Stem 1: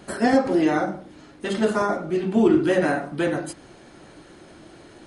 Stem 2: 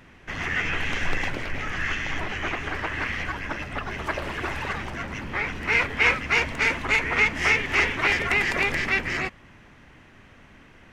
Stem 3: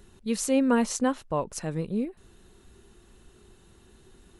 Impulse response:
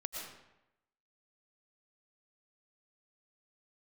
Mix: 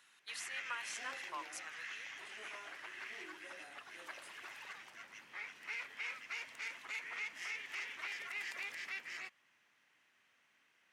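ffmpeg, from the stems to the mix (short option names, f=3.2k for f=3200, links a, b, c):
-filter_complex "[0:a]highpass=f=260:w=0.5412,highpass=f=260:w=1.3066,flanger=delay=22.5:depth=3.5:speed=0.51,adelay=750,volume=-11.5dB[a];[1:a]volume=-5.5dB[b];[2:a]highpass=f=1.3k:w=0.5412,highpass=f=1.3k:w=1.3066,acompressor=threshold=-39dB:ratio=6,volume=0.5dB[c];[a][b]amix=inputs=2:normalize=0,aderivative,alimiter=level_in=6dB:limit=-24dB:level=0:latency=1:release=76,volume=-6dB,volume=0dB[d];[c][d]amix=inputs=2:normalize=0,highpass=f=91:w=0.5412,highpass=f=91:w=1.3066,highshelf=f=4.3k:g=-9.5"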